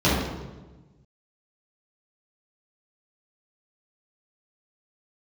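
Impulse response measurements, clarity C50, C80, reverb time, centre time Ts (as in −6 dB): −0.5 dB, 3.0 dB, 1.2 s, 78 ms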